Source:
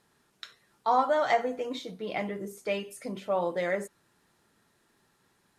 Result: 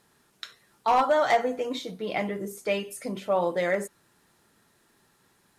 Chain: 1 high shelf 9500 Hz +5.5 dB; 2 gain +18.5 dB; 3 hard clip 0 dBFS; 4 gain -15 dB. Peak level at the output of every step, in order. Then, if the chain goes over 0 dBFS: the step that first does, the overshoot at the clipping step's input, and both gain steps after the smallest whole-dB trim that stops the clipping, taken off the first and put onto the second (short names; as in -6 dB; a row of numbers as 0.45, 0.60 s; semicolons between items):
-11.5, +7.0, 0.0, -15.0 dBFS; step 2, 7.0 dB; step 2 +11.5 dB, step 4 -8 dB